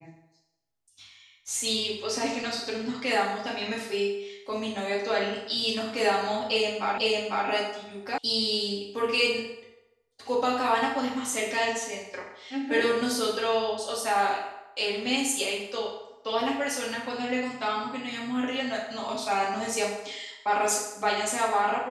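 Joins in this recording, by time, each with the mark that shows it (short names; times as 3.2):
6.98 repeat of the last 0.5 s
8.18 sound cut off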